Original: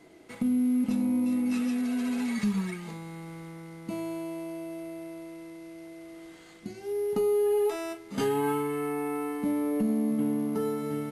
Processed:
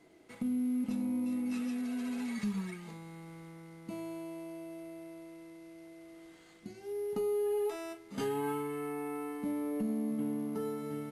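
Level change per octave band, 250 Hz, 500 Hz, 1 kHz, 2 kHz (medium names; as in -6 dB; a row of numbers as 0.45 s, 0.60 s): -7.0 dB, -7.0 dB, -7.0 dB, -7.0 dB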